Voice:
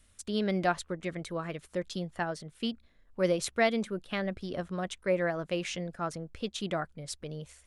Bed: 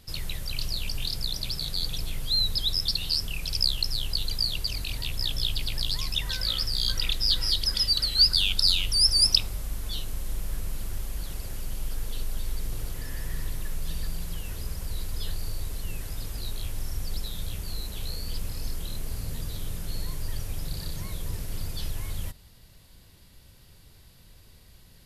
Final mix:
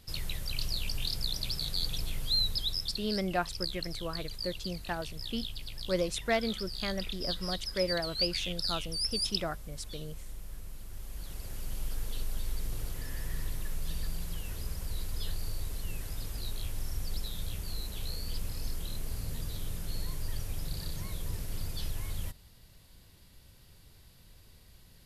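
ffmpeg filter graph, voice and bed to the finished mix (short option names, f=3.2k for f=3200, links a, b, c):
-filter_complex "[0:a]adelay=2700,volume=-3dB[a];[1:a]volume=5.5dB,afade=t=out:st=2.27:d=0.88:silence=0.354813,afade=t=in:st=10.87:d=0.91:silence=0.375837[b];[a][b]amix=inputs=2:normalize=0"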